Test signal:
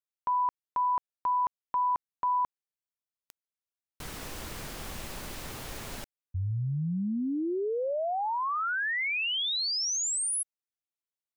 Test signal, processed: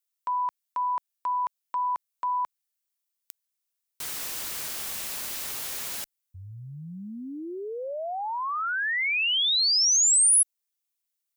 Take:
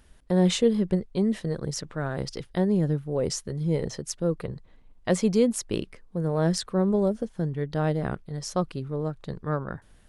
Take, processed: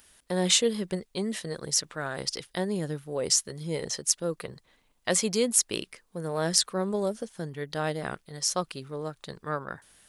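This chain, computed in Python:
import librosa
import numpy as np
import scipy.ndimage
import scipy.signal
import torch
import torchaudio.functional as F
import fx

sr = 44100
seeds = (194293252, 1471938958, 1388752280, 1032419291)

y = fx.tilt_eq(x, sr, slope=3.5)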